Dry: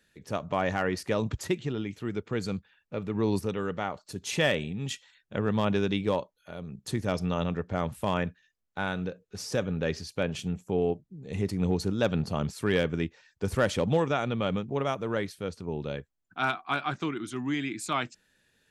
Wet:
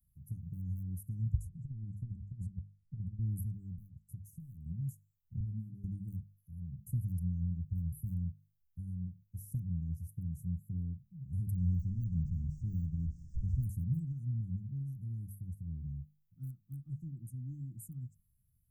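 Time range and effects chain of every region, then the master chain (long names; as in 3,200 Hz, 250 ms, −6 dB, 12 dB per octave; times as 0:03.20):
0:01.39–0:03.19: Butterworth low-pass 9,900 Hz + high-shelf EQ 6,100 Hz −8 dB + compressor whose output falls as the input rises −35 dBFS, ratio −0.5
0:03.71–0:04.66: high-shelf EQ 11,000 Hz −10.5 dB + downward compressor 10 to 1, threshold −35 dBFS + gain into a clipping stage and back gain 30.5 dB
0:05.40–0:05.84: gap after every zero crossing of 0.052 ms + band-pass filter 120–3,400 Hz + micro pitch shift up and down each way 20 cents
0:11.55–0:13.63: linear delta modulator 32 kbit/s, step −29.5 dBFS + de-essing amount 85% + single-tap delay 201 ms −20.5 dB
whole clip: inverse Chebyshev band-stop filter 500–4,200 Hz, stop band 70 dB; mains-hum notches 50/100/150/200 Hz; dynamic equaliser 110 Hz, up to −4 dB, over −48 dBFS, Q 1.2; level +7 dB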